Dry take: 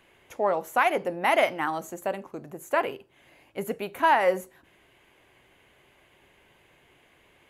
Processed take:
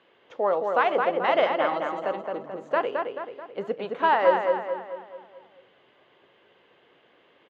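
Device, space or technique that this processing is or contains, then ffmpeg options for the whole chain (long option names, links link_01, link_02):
kitchen radio: -filter_complex "[0:a]highpass=190,equalizer=frequency=490:width_type=q:width=4:gain=7,equalizer=frequency=1200:width_type=q:width=4:gain=4,equalizer=frequency=2300:width_type=q:width=4:gain=-6,equalizer=frequency=3300:width_type=q:width=4:gain=3,lowpass=frequency=4400:width=0.5412,lowpass=frequency=4400:width=1.3066,asplit=2[link_01][link_02];[link_02]adelay=217,lowpass=frequency=3700:poles=1,volume=-4dB,asplit=2[link_03][link_04];[link_04]adelay=217,lowpass=frequency=3700:poles=1,volume=0.49,asplit=2[link_05][link_06];[link_06]adelay=217,lowpass=frequency=3700:poles=1,volume=0.49,asplit=2[link_07][link_08];[link_08]adelay=217,lowpass=frequency=3700:poles=1,volume=0.49,asplit=2[link_09][link_10];[link_10]adelay=217,lowpass=frequency=3700:poles=1,volume=0.49,asplit=2[link_11][link_12];[link_12]adelay=217,lowpass=frequency=3700:poles=1,volume=0.49[link_13];[link_01][link_03][link_05][link_07][link_09][link_11][link_13]amix=inputs=7:normalize=0,volume=-1.5dB"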